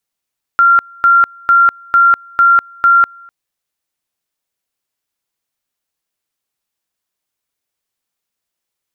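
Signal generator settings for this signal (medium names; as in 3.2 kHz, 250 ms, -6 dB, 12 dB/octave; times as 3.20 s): two-level tone 1.38 kHz -5 dBFS, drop 29.5 dB, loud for 0.20 s, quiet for 0.25 s, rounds 6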